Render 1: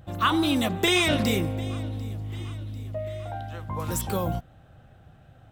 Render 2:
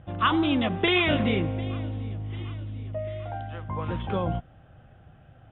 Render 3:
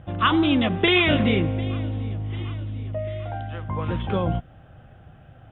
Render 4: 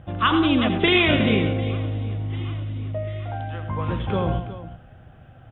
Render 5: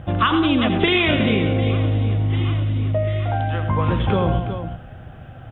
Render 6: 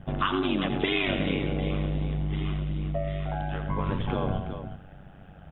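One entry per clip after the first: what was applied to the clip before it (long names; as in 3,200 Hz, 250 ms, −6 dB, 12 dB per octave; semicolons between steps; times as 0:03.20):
Butterworth low-pass 3,500 Hz 96 dB per octave
dynamic equaliser 870 Hz, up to −3 dB, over −42 dBFS, Q 1.1; level +4.5 dB
multi-tap delay 84/108/185/365 ms −10.5/−13.5/−14.5/−14 dB
downward compressor 6 to 1, threshold −23 dBFS, peak gain reduction 9 dB; level +8.5 dB
ring modulation 48 Hz; level −6 dB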